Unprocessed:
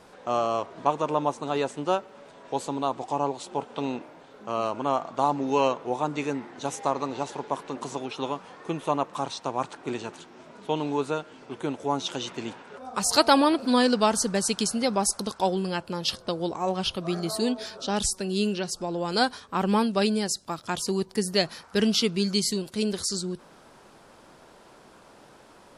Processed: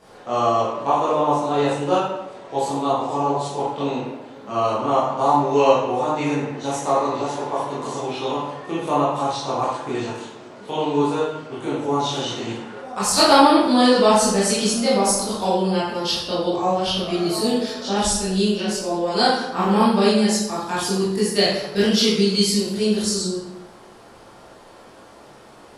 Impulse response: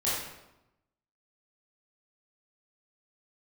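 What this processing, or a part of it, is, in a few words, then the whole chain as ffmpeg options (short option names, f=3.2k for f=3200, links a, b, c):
bathroom: -filter_complex "[1:a]atrim=start_sample=2205[a];[0:a][a]afir=irnorm=-1:irlink=0,volume=-2.5dB"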